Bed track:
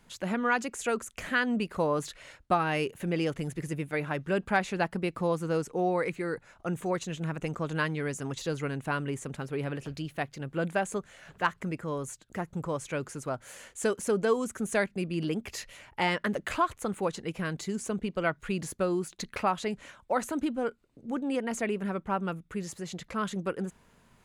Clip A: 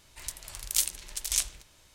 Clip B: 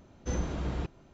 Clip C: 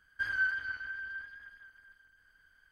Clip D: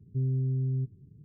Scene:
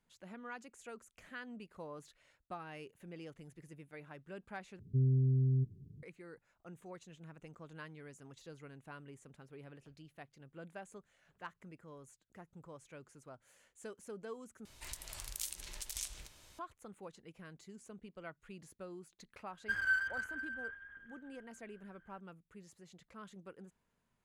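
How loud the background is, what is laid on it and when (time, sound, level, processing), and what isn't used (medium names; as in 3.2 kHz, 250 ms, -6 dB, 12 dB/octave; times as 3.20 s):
bed track -20 dB
4.79 s: replace with D -1.5 dB
14.65 s: replace with A -1.5 dB + compression 2.5:1, threshold -41 dBFS
19.49 s: add C -1.5 dB + local Wiener filter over 9 samples
not used: B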